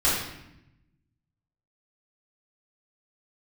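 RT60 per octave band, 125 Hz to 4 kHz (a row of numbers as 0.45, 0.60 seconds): 1.6, 1.3, 0.90, 0.80, 0.85, 0.70 seconds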